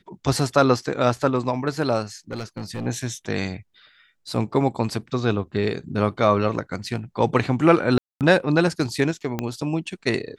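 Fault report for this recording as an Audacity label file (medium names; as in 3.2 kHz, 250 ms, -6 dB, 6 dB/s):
2.310000	2.870000	clipped -25 dBFS
7.980000	8.210000	dropout 228 ms
9.390000	9.390000	pop -11 dBFS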